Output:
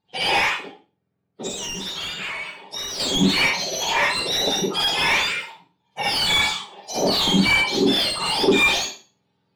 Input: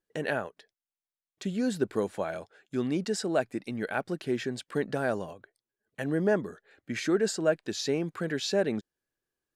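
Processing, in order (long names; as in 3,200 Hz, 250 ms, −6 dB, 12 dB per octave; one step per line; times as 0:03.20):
frequency axis turned over on the octave scale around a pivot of 1,200 Hz
parametric band 4,200 Hz +8 dB 2.2 octaves
convolution reverb RT60 0.35 s, pre-delay 43 ms, DRR −8 dB
mid-hump overdrive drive 24 dB, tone 1,200 Hz, clips at −1 dBFS
0:01.48–0:03.00: downward compressor, threshold −25 dBFS, peak gain reduction 10 dB
level −3 dB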